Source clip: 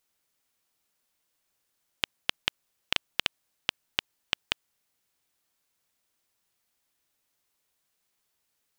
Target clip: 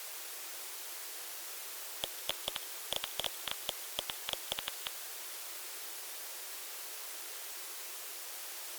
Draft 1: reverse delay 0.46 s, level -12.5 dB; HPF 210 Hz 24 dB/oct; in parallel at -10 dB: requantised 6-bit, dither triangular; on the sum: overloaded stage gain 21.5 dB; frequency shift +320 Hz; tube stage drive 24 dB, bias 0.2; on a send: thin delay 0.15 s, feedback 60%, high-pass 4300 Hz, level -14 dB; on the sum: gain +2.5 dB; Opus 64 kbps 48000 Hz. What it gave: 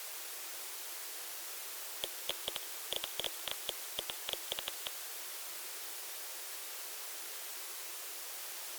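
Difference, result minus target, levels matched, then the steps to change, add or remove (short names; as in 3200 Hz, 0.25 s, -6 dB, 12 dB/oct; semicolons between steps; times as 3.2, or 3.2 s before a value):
overloaded stage: distortion +7 dB
change: overloaded stage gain 12 dB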